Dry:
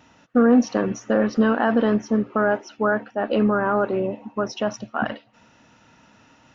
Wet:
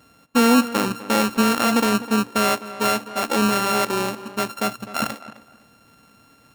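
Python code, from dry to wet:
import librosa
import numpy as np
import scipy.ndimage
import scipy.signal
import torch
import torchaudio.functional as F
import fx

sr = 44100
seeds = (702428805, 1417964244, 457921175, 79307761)

p1 = np.r_[np.sort(x[:len(x) // 32 * 32].reshape(-1, 32), axis=1).ravel(), x[len(x) // 32 * 32:]]
y = p1 + fx.echo_tape(p1, sr, ms=256, feedback_pct=24, wet_db=-14, lp_hz=2400.0, drive_db=2.0, wow_cents=30, dry=0)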